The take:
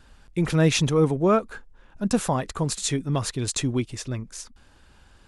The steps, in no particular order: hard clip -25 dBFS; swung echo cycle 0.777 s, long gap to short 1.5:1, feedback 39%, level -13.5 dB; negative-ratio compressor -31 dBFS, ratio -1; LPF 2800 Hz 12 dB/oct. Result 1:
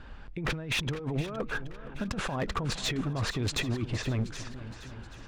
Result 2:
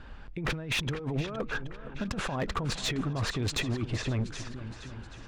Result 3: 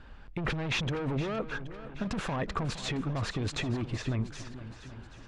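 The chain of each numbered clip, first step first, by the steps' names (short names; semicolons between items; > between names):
LPF > negative-ratio compressor > hard clip > swung echo; LPF > negative-ratio compressor > swung echo > hard clip; hard clip > LPF > negative-ratio compressor > swung echo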